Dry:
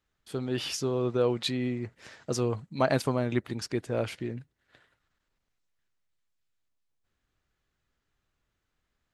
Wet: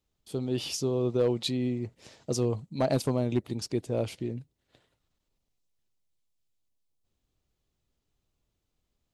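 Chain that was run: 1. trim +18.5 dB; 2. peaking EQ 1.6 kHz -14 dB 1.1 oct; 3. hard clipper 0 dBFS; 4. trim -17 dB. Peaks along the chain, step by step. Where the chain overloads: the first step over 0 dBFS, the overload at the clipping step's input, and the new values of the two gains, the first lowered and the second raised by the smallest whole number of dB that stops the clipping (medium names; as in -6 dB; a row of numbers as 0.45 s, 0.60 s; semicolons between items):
+9.0 dBFS, +5.0 dBFS, 0.0 dBFS, -17.0 dBFS; step 1, 5.0 dB; step 1 +13.5 dB, step 4 -12 dB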